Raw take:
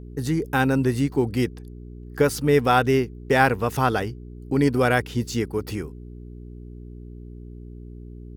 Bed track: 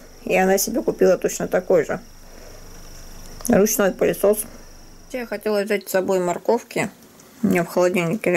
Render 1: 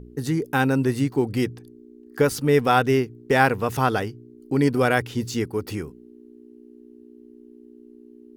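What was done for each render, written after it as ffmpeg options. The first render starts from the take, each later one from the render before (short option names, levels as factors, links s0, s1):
-af "bandreject=f=60:t=h:w=4,bandreject=f=120:t=h:w=4,bandreject=f=180:t=h:w=4"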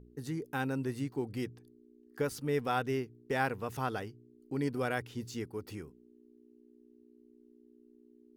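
-af "volume=0.211"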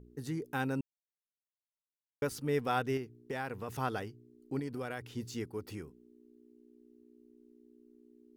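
-filter_complex "[0:a]asettb=1/sr,asplit=3[s0][s1][s2];[s0]atrim=end=2.974[s3];[s1]atrim=start=2.97:end=3.68,asetpts=PTS-STARTPTS,afade=t=in:d=0.004:c=qsin,afade=t=out:st=0.706:d=0.004:c=qsin,acompressor=threshold=0.0158:ratio=2.5:attack=3.2:release=140:knee=1:detection=peak[s4];[s2]atrim=start=3.676[s5];[s3][s4]acrossfade=d=0.004:c1=hsin:c2=qsin[s6];[s6][s5]acrossfade=d=0.004:c1=qsin:c2=hsin,asettb=1/sr,asplit=3[s7][s8][s9];[s7]atrim=end=4.594[s10];[s8]atrim=start=4.59:end=5.05,asetpts=PTS-STARTPTS,afade=t=in:d=0.004:c=qsin,afade=t=out:st=0.456:d=0.004:c=qsin,acompressor=threshold=0.0158:ratio=3:attack=3.2:release=140:knee=1:detection=peak[s11];[s9]atrim=start=5.046[s12];[s10][s11]acrossfade=d=0.004:c1=hsin:c2=qsin[s13];[s13][s12]acrossfade=d=0.004:c1=qsin:c2=hsin,asplit=3[s14][s15][s16];[s14]atrim=end=0.81,asetpts=PTS-STARTPTS,afade=t=out:st=0.806:d=0.004:c=hsin[s17];[s15]atrim=start=0.81:end=2.22,asetpts=PTS-STARTPTS,volume=0[s18];[s16]atrim=start=2.22,asetpts=PTS-STARTPTS,afade=t=in:d=0.004:c=hsin[s19];[s17][s18][s19]concat=n=3:v=0:a=1"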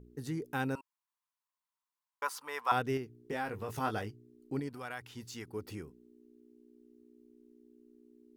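-filter_complex "[0:a]asettb=1/sr,asplit=3[s0][s1][s2];[s0]atrim=end=0.754[s3];[s1]atrim=start=0.75:end=2.72,asetpts=PTS-STARTPTS,afade=t=in:d=0.004:c=qsin,afade=t=out:st=1.966:d=0.004:c=qsin,highpass=f=1000:t=q:w=6.4[s4];[s2]atrim=start=2.716[s5];[s3][s4]acrossfade=d=0.004:c1=hsin:c2=qsin[s6];[s6][s5]acrossfade=d=0.004:c1=qsin:c2=hsin,asettb=1/sr,asplit=3[s7][s8][s9];[s7]atrim=end=3.234[s10];[s8]atrim=start=3.23:end=4.11,asetpts=PTS-STARTPTS,afade=t=in:d=0.004:c=qsin,afade=t=out:st=0.876:d=0.004:c=qsin,asplit=2[s11][s12];[s12]adelay=19,volume=0.531[s13];[s11][s13]amix=inputs=2:normalize=0,atrim=end_sample=38808[s14];[s9]atrim=start=4.106[s15];[s10][s14]acrossfade=d=0.004:c1=hsin:c2=qsin[s16];[s16][s15]acrossfade=d=0.004:c1=qsin:c2=hsin,asettb=1/sr,asplit=3[s17][s18][s19];[s17]atrim=end=4.694[s20];[s18]atrim=start=4.69:end=5.48,asetpts=PTS-STARTPTS,afade=t=in:d=0.004:c=qsin,afade=t=out:st=0.786:d=0.004:c=qsin,lowshelf=f=650:t=q:w=1.5:g=-6.5[s21];[s19]atrim=start=5.476[s22];[s20][s21]acrossfade=d=0.004:c1=hsin:c2=qsin[s23];[s23][s22]acrossfade=d=0.004:c1=qsin:c2=hsin"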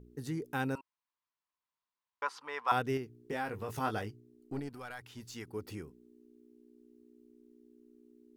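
-filter_complex "[0:a]asettb=1/sr,asplit=3[s0][s1][s2];[s0]atrim=end=0.784[s3];[s1]atrim=start=0.78:end=2.68,asetpts=PTS-STARTPTS,afade=t=in:d=0.004:c=qsin,afade=t=out:st=1.896:d=0.004:c=qsin,lowpass=4400[s4];[s2]atrim=start=2.676[s5];[s3][s4]acrossfade=d=0.004:c1=hsin:c2=qsin[s6];[s6][s5]acrossfade=d=0.004:c1=qsin:c2=hsin,asettb=1/sr,asplit=3[s7][s8][s9];[s7]atrim=end=4.204[s10];[s8]atrim=start=4.2:end=5.36,asetpts=PTS-STARTPTS,afade=t=in:d=0.004:c=qsin,afade=t=out:st=1.156:d=0.004:c=qsin,aeval=exprs='(tanh(31.6*val(0)+0.4)-tanh(0.4))/31.6':c=same[s11];[s9]atrim=start=5.356[s12];[s10][s11]acrossfade=d=0.004:c1=hsin:c2=qsin[s13];[s13][s12]acrossfade=d=0.004:c1=qsin:c2=hsin"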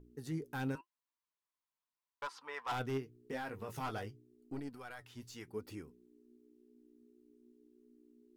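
-af "asoftclip=type=hard:threshold=0.0335,flanger=delay=2.9:depth=5.5:regen=63:speed=0.87:shape=triangular"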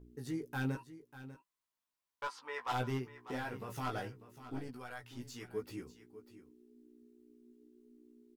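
-filter_complex "[0:a]asplit=2[s0][s1];[s1]adelay=16,volume=0.668[s2];[s0][s2]amix=inputs=2:normalize=0,aecho=1:1:595:0.188"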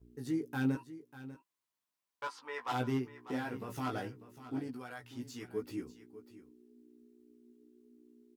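-af "highpass=55,adynamicequalizer=threshold=0.00178:dfrequency=280:dqfactor=2:tfrequency=280:tqfactor=2:attack=5:release=100:ratio=0.375:range=3.5:mode=boostabove:tftype=bell"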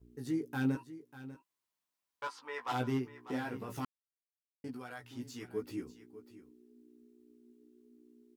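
-filter_complex "[0:a]asplit=3[s0][s1][s2];[s0]atrim=end=3.85,asetpts=PTS-STARTPTS,afade=t=out:st=3.846:d=0.004:c=hsin[s3];[s1]atrim=start=3.85:end=4.64,asetpts=PTS-STARTPTS,volume=0[s4];[s2]atrim=start=4.64,asetpts=PTS-STARTPTS,afade=t=in:d=0.004:c=hsin[s5];[s3][s4][s5]concat=n=3:v=0:a=1"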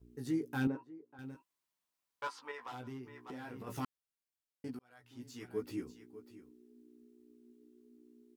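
-filter_complex "[0:a]asettb=1/sr,asplit=3[s0][s1][s2];[s0]atrim=end=0.674[s3];[s1]atrim=start=0.67:end=1.19,asetpts=PTS-STARTPTS,afade=t=in:d=0.004:c=qsin,afade=t=out:st=0.516:d=0.004:c=qsin,bandpass=f=560:t=q:w=0.8[s4];[s2]atrim=start=1.186[s5];[s3][s4]acrossfade=d=0.004:c1=hsin:c2=qsin[s6];[s6][s5]acrossfade=d=0.004:c1=qsin:c2=hsin,asettb=1/sr,asplit=3[s7][s8][s9];[s7]atrim=end=2.514[s10];[s8]atrim=start=2.51:end=3.67,asetpts=PTS-STARTPTS,afade=t=in:d=0.004:c=qsin,afade=t=out:st=1.156:d=0.004:c=qsin,acompressor=threshold=0.00794:ratio=8:attack=3.2:release=140:knee=1:detection=peak[s11];[s9]atrim=start=3.666[s12];[s10][s11]acrossfade=d=0.004:c1=hsin:c2=qsin[s13];[s13][s12]acrossfade=d=0.004:c1=qsin:c2=hsin,asplit=2[s14][s15];[s14]atrim=end=4.79,asetpts=PTS-STARTPTS,afade=t=out:st=4.786:d=0.004:c=hsin[s16];[s15]atrim=start=4.79,asetpts=PTS-STARTPTS,afade=t=in:d=0.82[s17];[s16][s17]concat=n=2:v=0:a=1"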